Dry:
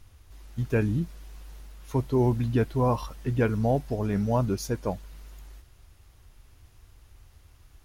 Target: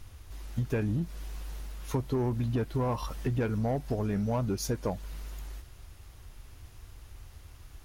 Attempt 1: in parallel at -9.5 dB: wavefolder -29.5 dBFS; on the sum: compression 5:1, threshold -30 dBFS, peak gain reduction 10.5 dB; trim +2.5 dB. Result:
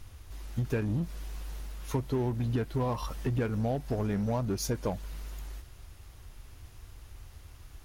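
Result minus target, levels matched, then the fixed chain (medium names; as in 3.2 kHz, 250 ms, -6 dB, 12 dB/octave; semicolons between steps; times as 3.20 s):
wavefolder: distortion +15 dB
in parallel at -9.5 dB: wavefolder -23 dBFS; on the sum: compression 5:1, threshold -30 dBFS, peak gain reduction 10.5 dB; trim +2.5 dB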